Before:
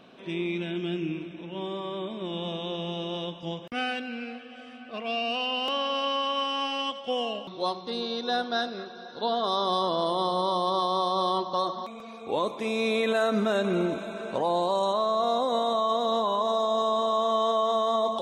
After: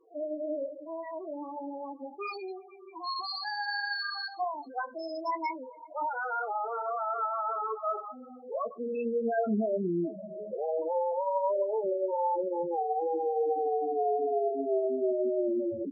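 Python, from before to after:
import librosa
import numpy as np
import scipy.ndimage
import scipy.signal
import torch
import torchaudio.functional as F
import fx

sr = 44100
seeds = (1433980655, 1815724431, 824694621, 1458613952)

y = fx.speed_glide(x, sr, from_pct=179, to_pct=50)
y = fx.spec_topn(y, sr, count=4)
y = fx.chorus_voices(y, sr, voices=2, hz=1.2, base_ms=21, depth_ms=3.0, mix_pct=25)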